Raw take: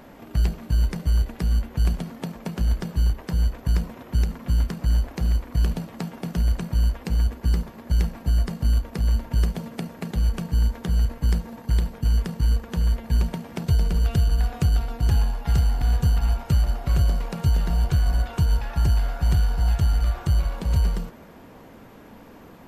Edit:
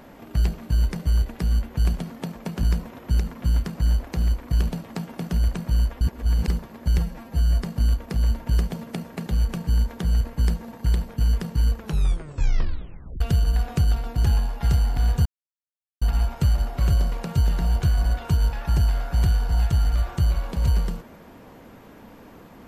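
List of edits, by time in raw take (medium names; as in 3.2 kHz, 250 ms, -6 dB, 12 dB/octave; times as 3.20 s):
2.63–3.67 s: delete
7.05–7.52 s: reverse
8.02–8.41 s: stretch 1.5×
12.63 s: tape stop 1.42 s
16.10 s: insert silence 0.76 s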